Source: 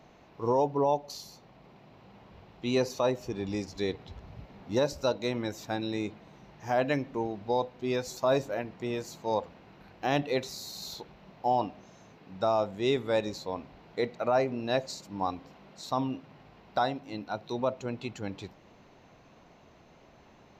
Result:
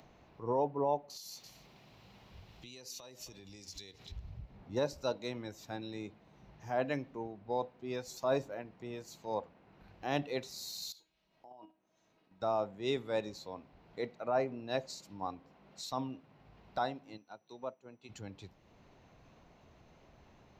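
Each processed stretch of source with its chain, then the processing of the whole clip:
0:01.17–0:04.12: high-shelf EQ 2,400 Hz +11.5 dB + single-tap delay 266 ms −21 dB + downward compressor, threshold −42 dBFS
0:10.92–0:12.42: parametric band 92 Hz −6.5 dB 1.6 octaves + output level in coarse steps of 12 dB + tuned comb filter 320 Hz, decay 0.24 s, mix 80%
0:17.16–0:18.08: low-shelf EQ 140 Hz −9.5 dB + steady tone 5,900 Hz −62 dBFS + expander for the loud parts, over −47 dBFS
whole clip: upward compression, threshold −30 dBFS; multiband upward and downward expander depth 70%; level −9 dB

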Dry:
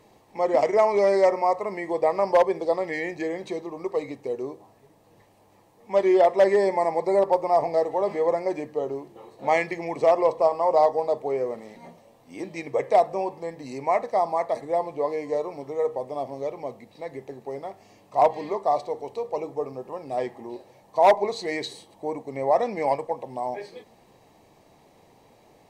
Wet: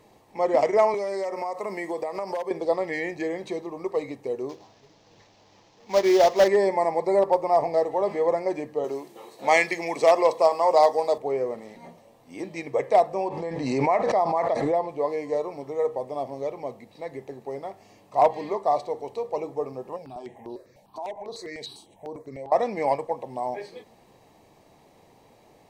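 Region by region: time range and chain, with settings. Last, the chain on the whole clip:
0:00.94–0:02.51: high-pass filter 160 Hz 24 dB per octave + high-shelf EQ 6,300 Hz +11 dB + downward compressor 12 to 1, threshold −25 dBFS
0:04.49–0:06.48: variable-slope delta modulation 32 kbit/s + high-shelf EQ 3,000 Hz +9 dB + floating-point word with a short mantissa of 4 bits
0:08.84–0:11.18: high-pass filter 180 Hz + high-shelf EQ 2,000 Hz +11.5 dB + notch filter 2,900 Hz, Q 30
0:13.28–0:14.89: high-frequency loss of the air 66 metres + background raised ahead of every attack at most 33 dB per second
0:19.96–0:22.52: downward compressor 4 to 1, threshold −31 dBFS + step-sequenced phaser 10 Hz 330–7,400 Hz
whole clip: no processing

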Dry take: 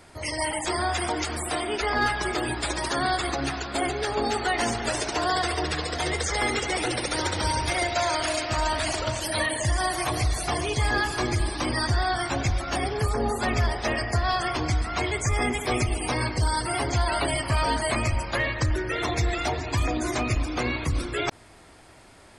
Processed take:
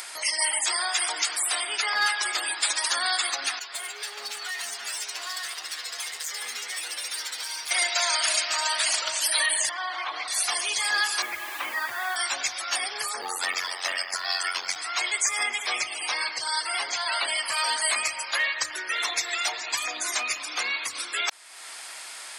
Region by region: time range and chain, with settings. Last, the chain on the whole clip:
0:03.59–0:07.71: stiff-string resonator 80 Hz, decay 0.23 s, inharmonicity 0.002 + hard clipping −33 dBFS + single-tap delay 760 ms −15.5 dB
0:09.69–0:10.28: loudspeaker in its box 280–3,000 Hz, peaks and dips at 370 Hz −5 dB, 630 Hz −6 dB, 1,800 Hz −7 dB, 2,600 Hz −8 dB + envelope flattener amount 50%
0:11.22–0:12.16: low-pass filter 2,700 Hz 24 dB per octave + bit-depth reduction 8 bits, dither none
0:13.21–0:14.76: comb filter 5 ms, depth 70% + ring modulation 45 Hz + floating-point word with a short mantissa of 6 bits
0:15.43–0:17.44: low-pass filter 5,800 Hz + mains-hum notches 50/100/150/200/250/300/350/400/450 Hz
whole clip: high-pass filter 1,100 Hz 12 dB per octave; high-shelf EQ 2,800 Hz +9.5 dB; upward compression, threshold −29 dBFS

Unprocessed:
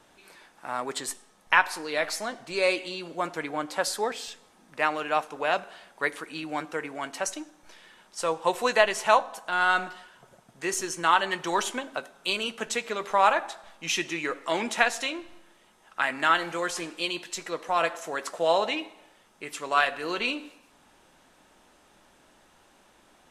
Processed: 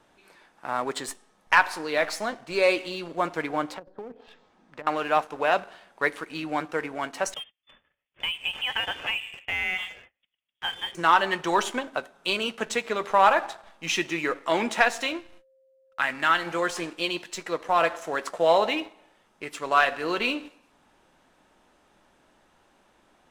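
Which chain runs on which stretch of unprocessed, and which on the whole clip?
0:03.74–0:04.87: treble cut that deepens with the level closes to 350 Hz, closed at −25.5 dBFS + downward compressor 10 to 1, threshold −36 dBFS + high-frequency loss of the air 78 metres
0:07.34–0:10.95: noise gate −51 dBFS, range −27 dB + voice inversion scrambler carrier 3,500 Hz + downward compressor 10 to 1, threshold −25 dBFS
0:15.17–0:16.45: noise gate −51 dBFS, range −37 dB + parametric band 510 Hz −6.5 dB 2.2 octaves + steady tone 530 Hz −58 dBFS
whole clip: high-shelf EQ 4,100 Hz −7.5 dB; leveller curve on the samples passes 1

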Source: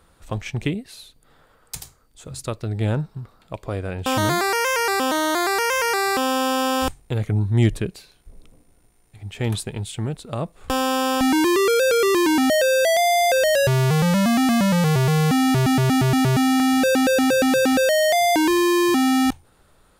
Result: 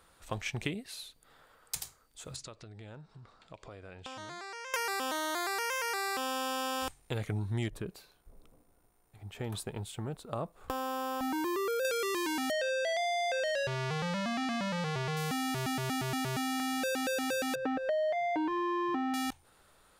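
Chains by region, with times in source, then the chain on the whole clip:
0:02.36–0:04.74: low-pass filter 7,500 Hz 24 dB per octave + downward compressor 4 to 1, threshold −38 dBFS
0:07.68–0:11.85: flat-topped bell 4,400 Hz −8.5 dB 2.9 octaves + downward compressor, threshold −21 dBFS
0:12.51–0:15.17: low-pass filter 5,000 Hz + single-tap delay 80 ms −19 dB
0:17.55–0:19.14: low-pass filter 1,400 Hz + comb filter 6.7 ms, depth 55% + hum removal 354.7 Hz, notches 31
whole clip: low-shelf EQ 420 Hz −9.5 dB; downward compressor, threshold −27 dBFS; level −2.5 dB

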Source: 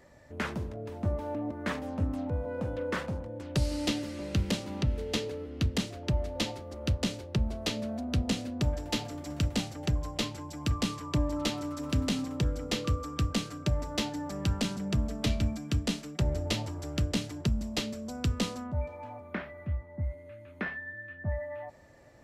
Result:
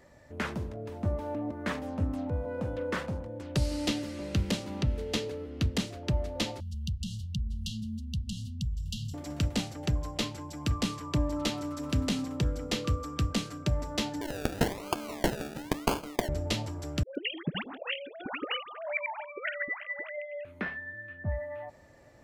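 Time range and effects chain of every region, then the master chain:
0:06.60–0:09.14: low-shelf EQ 170 Hz +11.5 dB + downward compressor, threshold −29 dBFS + linear-phase brick-wall band-stop 230–2,700 Hz
0:14.21–0:16.29: Butterworth high-pass 260 Hz 48 dB per octave + parametric band 3,200 Hz +10.5 dB 2.7 octaves + sample-and-hold swept by an LFO 33×, swing 60% 1 Hz
0:17.03–0:20.45: three sine waves on the formant tracks + tilt shelving filter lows −9.5 dB, about 1,100 Hz + all-pass dispersion highs, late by 126 ms, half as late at 770 Hz
whole clip: no processing

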